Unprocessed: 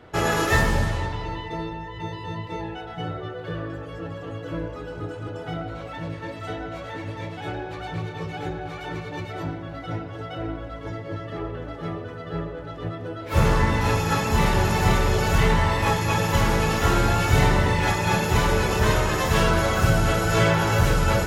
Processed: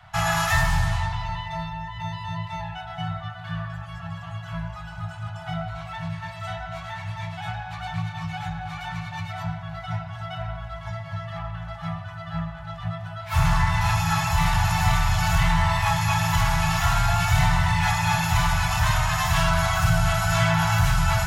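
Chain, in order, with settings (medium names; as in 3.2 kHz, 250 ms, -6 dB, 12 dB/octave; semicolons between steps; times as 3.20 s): Chebyshev band-stop 170–670 Hz, order 5; in parallel at +1 dB: peak limiter -16.5 dBFS, peak gain reduction 9.5 dB; on the sum: trim -4 dB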